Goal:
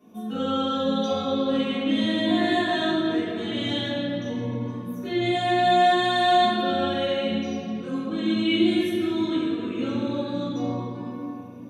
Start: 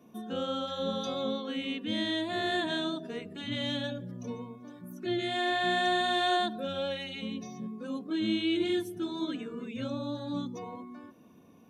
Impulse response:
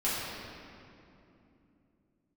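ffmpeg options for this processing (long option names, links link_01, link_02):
-filter_complex "[1:a]atrim=start_sample=2205[link_01];[0:a][link_01]afir=irnorm=-1:irlink=0,volume=-2dB"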